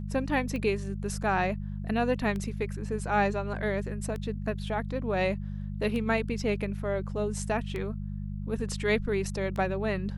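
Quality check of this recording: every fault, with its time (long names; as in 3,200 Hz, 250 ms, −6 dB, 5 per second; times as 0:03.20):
mains hum 50 Hz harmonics 4 −35 dBFS
scratch tick 33 1/3 rpm −23 dBFS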